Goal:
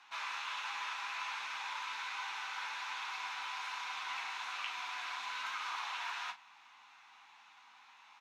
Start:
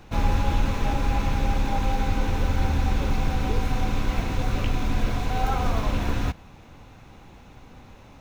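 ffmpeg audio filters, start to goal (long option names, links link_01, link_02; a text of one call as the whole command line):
ffmpeg -i in.wav -filter_complex "[0:a]afftfilt=real='re*lt(hypot(re,im),0.141)':imag='im*lt(hypot(re,im),0.141)':win_size=1024:overlap=0.75,highpass=210,lowpass=3100,aderivative,flanger=delay=8.4:depth=5.4:regen=-37:speed=1.3:shape=sinusoidal,lowshelf=frequency=700:width_type=q:width=3:gain=-10,asplit=2[link_01][link_02];[link_02]adelay=38,volume=-11dB[link_03];[link_01][link_03]amix=inputs=2:normalize=0,volume=10dB" out.wav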